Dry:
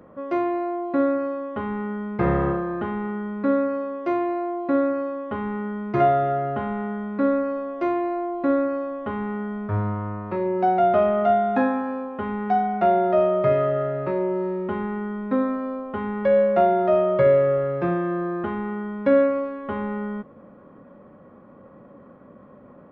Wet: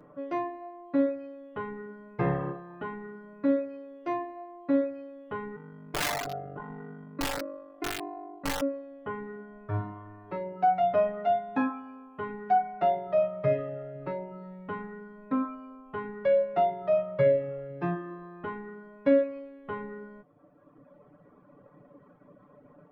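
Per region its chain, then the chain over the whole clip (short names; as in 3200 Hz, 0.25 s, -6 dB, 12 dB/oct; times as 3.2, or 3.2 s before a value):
5.56–8.62 AM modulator 49 Hz, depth 95% + wrapped overs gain 17 dB
whole clip: reverb removal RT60 1.6 s; comb 6.8 ms, depth 80%; gain -6.5 dB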